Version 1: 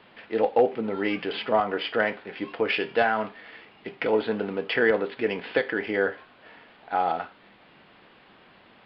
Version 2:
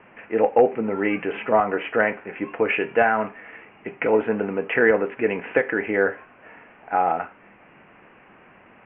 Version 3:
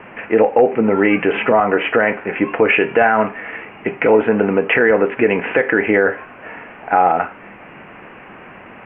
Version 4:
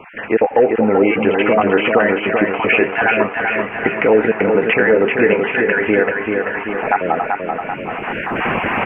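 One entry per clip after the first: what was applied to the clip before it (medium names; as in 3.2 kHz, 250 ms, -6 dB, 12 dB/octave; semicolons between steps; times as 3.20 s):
steep low-pass 2.7 kHz 72 dB/octave; trim +4 dB
in parallel at +1 dB: compression, threshold -26 dBFS, peak gain reduction 14.5 dB; on the sum: loudness maximiser +8 dB; trim -2 dB
random holes in the spectrogram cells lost 26%; recorder AGC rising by 17 dB/s; on a send: feedback delay 387 ms, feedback 57%, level -4.5 dB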